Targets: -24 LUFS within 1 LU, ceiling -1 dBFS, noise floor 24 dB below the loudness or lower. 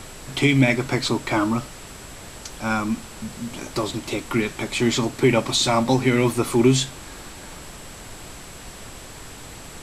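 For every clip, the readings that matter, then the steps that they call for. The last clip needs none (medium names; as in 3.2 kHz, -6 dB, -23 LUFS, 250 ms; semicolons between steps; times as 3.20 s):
steady tone 7.7 kHz; tone level -47 dBFS; noise floor -40 dBFS; noise floor target -46 dBFS; loudness -21.5 LUFS; peak level -4.0 dBFS; loudness target -24.0 LUFS
-> band-stop 7.7 kHz, Q 30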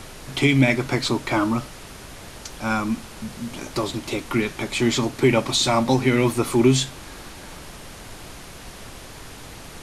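steady tone not found; noise floor -40 dBFS; noise floor target -46 dBFS
-> noise print and reduce 6 dB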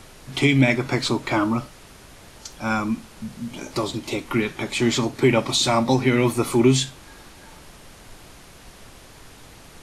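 noise floor -46 dBFS; loudness -21.5 LUFS; peak level -4.0 dBFS; loudness target -24.0 LUFS
-> trim -2.5 dB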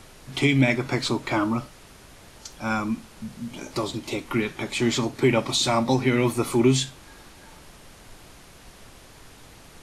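loudness -24.0 LUFS; peak level -6.5 dBFS; noise floor -49 dBFS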